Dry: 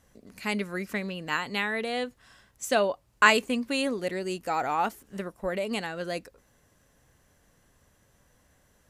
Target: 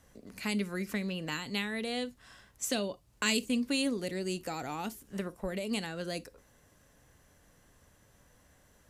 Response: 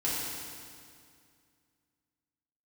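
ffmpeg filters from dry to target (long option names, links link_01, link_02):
-filter_complex "[0:a]acrossover=split=330|3000[link_01][link_02][link_03];[link_02]acompressor=threshold=-40dB:ratio=6[link_04];[link_01][link_04][link_03]amix=inputs=3:normalize=0,asplit=2[link_05][link_06];[1:a]atrim=start_sample=2205,atrim=end_sample=3087[link_07];[link_06][link_07]afir=irnorm=-1:irlink=0,volume=-20dB[link_08];[link_05][link_08]amix=inputs=2:normalize=0"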